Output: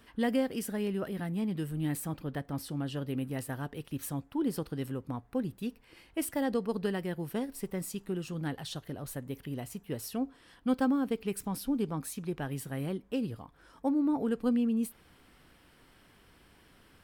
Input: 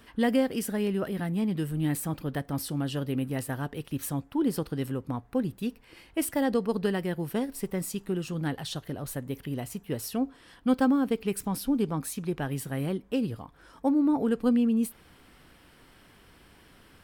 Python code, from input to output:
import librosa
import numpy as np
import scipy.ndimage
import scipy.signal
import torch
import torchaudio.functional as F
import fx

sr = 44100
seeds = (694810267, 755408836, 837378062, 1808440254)

y = fx.high_shelf(x, sr, hz=5700.0, db=-5.5, at=(2.13, 3.08))
y = F.gain(torch.from_numpy(y), -4.5).numpy()